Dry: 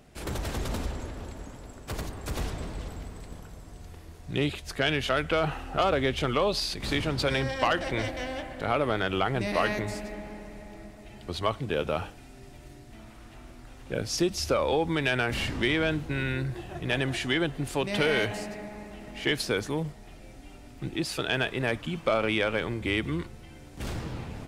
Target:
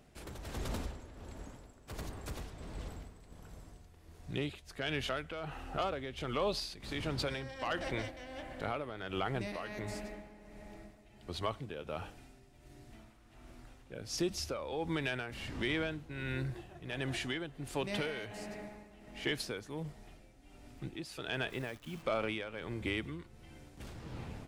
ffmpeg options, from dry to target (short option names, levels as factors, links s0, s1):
-filter_complex "[0:a]alimiter=limit=0.141:level=0:latency=1:release=128,tremolo=f=1.4:d=0.63,asplit=3[s0][s1][s2];[s0]afade=t=out:st=21.49:d=0.02[s3];[s1]acrusher=bits=9:dc=4:mix=0:aa=0.000001,afade=t=in:st=21.49:d=0.02,afade=t=out:st=22.01:d=0.02[s4];[s2]afade=t=in:st=22.01:d=0.02[s5];[s3][s4][s5]amix=inputs=3:normalize=0,volume=0.501"